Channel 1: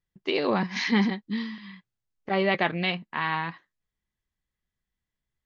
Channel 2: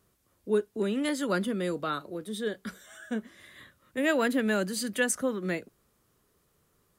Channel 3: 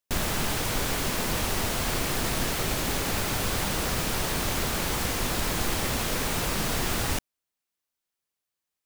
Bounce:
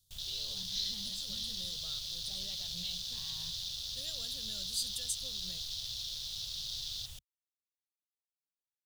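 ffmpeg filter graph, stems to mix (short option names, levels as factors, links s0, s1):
-filter_complex "[0:a]volume=0.944[s0];[1:a]volume=0.531[s1];[2:a]afwtdn=0.0178,tiltshelf=f=790:g=-6,volume=0.178[s2];[s0][s1]amix=inputs=2:normalize=0,alimiter=level_in=1.78:limit=0.0631:level=0:latency=1:release=370,volume=0.562,volume=1[s3];[s2][s3]amix=inputs=2:normalize=0,firequalizer=gain_entry='entry(110,0);entry(290,-28);entry(530,-17);entry(960,-23);entry(2200,-22);entry(3500,11);entry(5100,8);entry(8700,5)':delay=0.05:min_phase=1"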